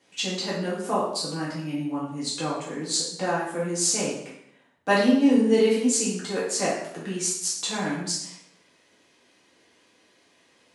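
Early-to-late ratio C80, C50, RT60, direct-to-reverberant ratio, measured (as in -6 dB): 6.5 dB, 2.5 dB, 0.75 s, -8.0 dB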